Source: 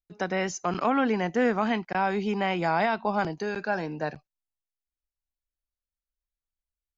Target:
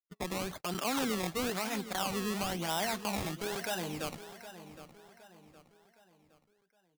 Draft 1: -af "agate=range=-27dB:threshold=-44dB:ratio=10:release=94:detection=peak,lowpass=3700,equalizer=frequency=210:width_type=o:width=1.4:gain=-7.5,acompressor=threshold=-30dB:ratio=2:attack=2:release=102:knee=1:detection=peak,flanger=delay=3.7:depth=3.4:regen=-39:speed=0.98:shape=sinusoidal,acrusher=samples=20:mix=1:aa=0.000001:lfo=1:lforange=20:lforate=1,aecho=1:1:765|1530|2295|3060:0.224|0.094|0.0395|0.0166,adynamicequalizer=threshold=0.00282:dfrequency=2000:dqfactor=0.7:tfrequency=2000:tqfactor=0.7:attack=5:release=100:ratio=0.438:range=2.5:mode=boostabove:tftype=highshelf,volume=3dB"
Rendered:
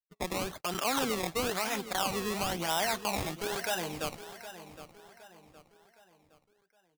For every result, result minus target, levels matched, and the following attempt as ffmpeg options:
downward compressor: peak gain reduction −4 dB; 250 Hz band −3.5 dB
-af "agate=range=-27dB:threshold=-44dB:ratio=10:release=94:detection=peak,lowpass=3700,equalizer=frequency=210:width_type=o:width=1.4:gain=-7.5,acompressor=threshold=-37dB:ratio=2:attack=2:release=102:knee=1:detection=peak,flanger=delay=3.7:depth=3.4:regen=-39:speed=0.98:shape=sinusoidal,acrusher=samples=20:mix=1:aa=0.000001:lfo=1:lforange=20:lforate=1,aecho=1:1:765|1530|2295|3060:0.224|0.094|0.0395|0.0166,adynamicequalizer=threshold=0.00282:dfrequency=2000:dqfactor=0.7:tfrequency=2000:tqfactor=0.7:attack=5:release=100:ratio=0.438:range=2.5:mode=boostabove:tftype=highshelf,volume=3dB"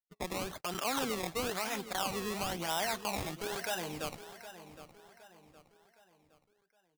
250 Hz band −3.5 dB
-af "agate=range=-27dB:threshold=-44dB:ratio=10:release=94:detection=peak,lowpass=3700,acompressor=threshold=-37dB:ratio=2:attack=2:release=102:knee=1:detection=peak,flanger=delay=3.7:depth=3.4:regen=-39:speed=0.98:shape=sinusoidal,acrusher=samples=20:mix=1:aa=0.000001:lfo=1:lforange=20:lforate=1,aecho=1:1:765|1530|2295|3060:0.224|0.094|0.0395|0.0166,adynamicequalizer=threshold=0.00282:dfrequency=2000:dqfactor=0.7:tfrequency=2000:tqfactor=0.7:attack=5:release=100:ratio=0.438:range=2.5:mode=boostabove:tftype=highshelf,volume=3dB"

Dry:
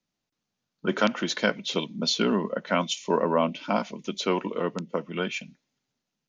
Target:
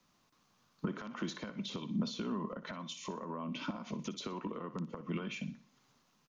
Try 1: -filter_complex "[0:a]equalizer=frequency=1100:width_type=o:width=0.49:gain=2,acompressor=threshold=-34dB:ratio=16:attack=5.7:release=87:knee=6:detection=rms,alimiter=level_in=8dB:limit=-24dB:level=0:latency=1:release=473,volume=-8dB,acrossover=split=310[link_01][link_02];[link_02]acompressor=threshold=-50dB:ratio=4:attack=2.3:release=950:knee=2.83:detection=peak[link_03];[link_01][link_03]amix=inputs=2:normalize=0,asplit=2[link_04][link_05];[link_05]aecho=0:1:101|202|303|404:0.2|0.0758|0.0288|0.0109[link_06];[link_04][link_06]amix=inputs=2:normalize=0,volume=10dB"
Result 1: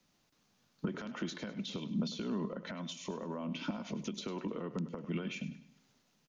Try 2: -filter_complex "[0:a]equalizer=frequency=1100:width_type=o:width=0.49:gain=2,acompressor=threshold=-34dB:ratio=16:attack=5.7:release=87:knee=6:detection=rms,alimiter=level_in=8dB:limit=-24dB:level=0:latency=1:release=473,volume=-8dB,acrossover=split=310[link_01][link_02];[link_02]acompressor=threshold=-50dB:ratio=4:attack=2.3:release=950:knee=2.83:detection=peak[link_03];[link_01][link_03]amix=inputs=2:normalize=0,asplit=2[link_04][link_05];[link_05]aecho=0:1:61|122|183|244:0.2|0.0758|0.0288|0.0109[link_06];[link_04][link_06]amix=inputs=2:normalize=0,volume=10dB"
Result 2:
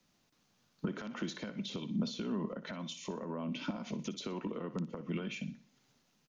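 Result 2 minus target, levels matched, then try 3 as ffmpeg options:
1,000 Hz band −4.0 dB
-filter_complex "[0:a]equalizer=frequency=1100:width_type=o:width=0.49:gain=11.5,acompressor=threshold=-34dB:ratio=16:attack=5.7:release=87:knee=6:detection=rms,alimiter=level_in=8dB:limit=-24dB:level=0:latency=1:release=473,volume=-8dB,acrossover=split=310[link_01][link_02];[link_02]acompressor=threshold=-50dB:ratio=4:attack=2.3:release=950:knee=2.83:detection=peak[link_03];[link_01][link_03]amix=inputs=2:normalize=0,asplit=2[link_04][link_05];[link_05]aecho=0:1:61|122|183|244:0.2|0.0758|0.0288|0.0109[link_06];[link_04][link_06]amix=inputs=2:normalize=0,volume=10dB"

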